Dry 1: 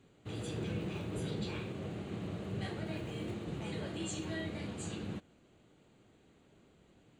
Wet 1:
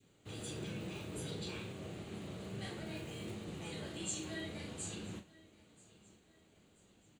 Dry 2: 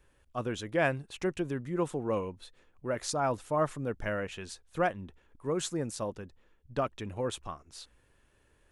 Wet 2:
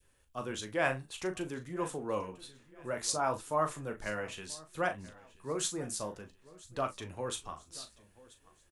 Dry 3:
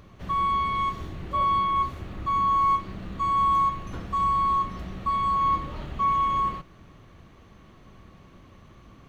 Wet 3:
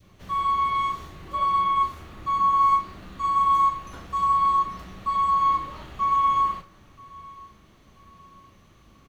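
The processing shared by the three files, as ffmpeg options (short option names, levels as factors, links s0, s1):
-filter_complex "[0:a]highshelf=f=4000:g=11,aecho=1:1:983|1966|2949:0.0891|0.0383|0.0165,flanger=delay=10:depth=6:regen=-59:speed=0.59:shape=triangular,adynamicequalizer=threshold=0.01:dfrequency=1100:dqfactor=1.1:tfrequency=1100:tqfactor=1.1:attack=5:release=100:ratio=0.375:range=2.5:mode=boostabove:tftype=bell,asplit=2[s0][s1];[s1]adelay=38,volume=0.335[s2];[s0][s2]amix=inputs=2:normalize=0,acrossover=split=310[s3][s4];[s3]asoftclip=type=tanh:threshold=0.0141[s5];[s5][s4]amix=inputs=2:normalize=0,volume=0.891"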